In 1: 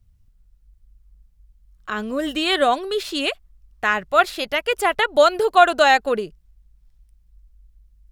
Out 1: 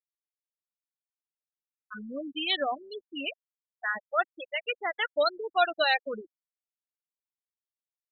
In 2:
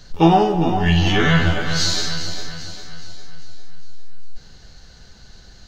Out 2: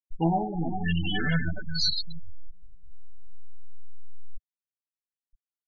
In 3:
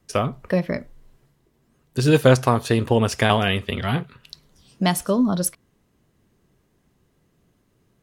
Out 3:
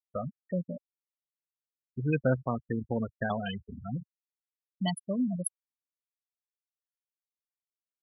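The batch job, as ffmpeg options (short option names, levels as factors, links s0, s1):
-af "afftfilt=real='re*gte(hypot(re,im),0.282)':imag='im*gte(hypot(re,im),0.282)':win_size=1024:overlap=0.75,equalizer=f=100:t=o:w=0.67:g=-10,equalizer=f=400:t=o:w=0.67:g=-10,equalizer=f=1000:t=o:w=0.67:g=-9,equalizer=f=4000:t=o:w=0.67:g=8,volume=0.447"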